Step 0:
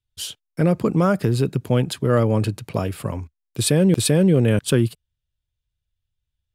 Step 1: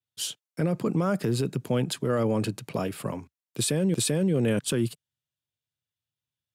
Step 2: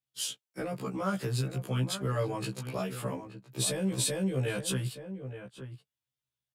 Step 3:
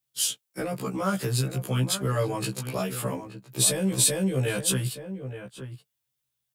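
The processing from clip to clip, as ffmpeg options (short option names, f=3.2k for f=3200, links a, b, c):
-af "highpass=f=130:w=0.5412,highpass=f=130:w=1.3066,adynamicequalizer=threshold=0.01:dfrequency=7200:dqfactor=1.3:tfrequency=7200:tqfactor=1.3:attack=5:release=100:ratio=0.375:range=2.5:mode=boostabove:tftype=bell,alimiter=limit=-14dB:level=0:latency=1:release=20,volume=-3dB"
-filter_complex "[0:a]acrossover=split=150|520|2100[a][b][c][d];[b]acompressor=threshold=-37dB:ratio=6[e];[a][e][c][d]amix=inputs=4:normalize=0,asplit=2[f][g];[g]adelay=874.6,volume=-10dB,highshelf=f=4k:g=-19.7[h];[f][h]amix=inputs=2:normalize=0,afftfilt=real='re*1.73*eq(mod(b,3),0)':imag='im*1.73*eq(mod(b,3),0)':win_size=2048:overlap=0.75"
-af "crystalizer=i=1:c=0,volume=4.5dB"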